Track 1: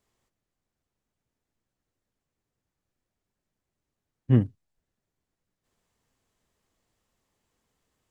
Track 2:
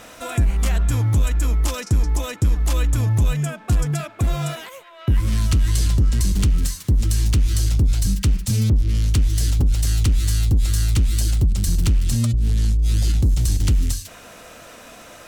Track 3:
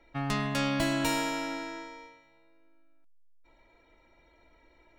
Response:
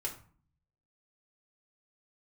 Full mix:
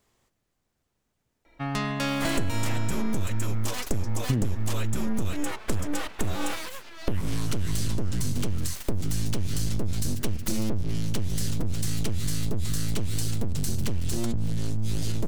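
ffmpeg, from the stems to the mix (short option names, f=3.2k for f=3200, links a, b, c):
-filter_complex "[0:a]alimiter=limit=-16dB:level=0:latency=1,acontrast=57,volume=1dB[a];[1:a]aeval=exprs='abs(val(0))':c=same,adelay=2000,volume=2.5dB[b];[2:a]adelay=1450,volume=2dB[c];[a][b][c]amix=inputs=3:normalize=0,acompressor=threshold=-21dB:ratio=6"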